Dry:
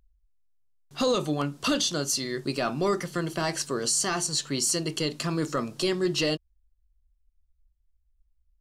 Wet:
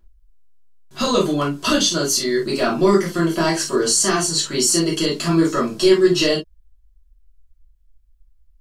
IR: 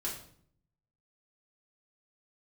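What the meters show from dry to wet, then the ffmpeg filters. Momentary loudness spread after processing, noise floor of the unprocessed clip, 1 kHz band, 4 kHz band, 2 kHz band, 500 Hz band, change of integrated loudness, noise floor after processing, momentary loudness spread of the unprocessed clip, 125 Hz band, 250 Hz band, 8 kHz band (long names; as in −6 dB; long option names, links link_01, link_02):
5 LU, −71 dBFS, +8.5 dB, +8.0 dB, +8.0 dB, +10.5 dB, +9.5 dB, −56 dBFS, 5 LU, +7.0 dB, +10.5 dB, +8.0 dB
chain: -filter_complex "[1:a]atrim=start_sample=2205,atrim=end_sample=3087[link_01];[0:a][link_01]afir=irnorm=-1:irlink=0,volume=7dB"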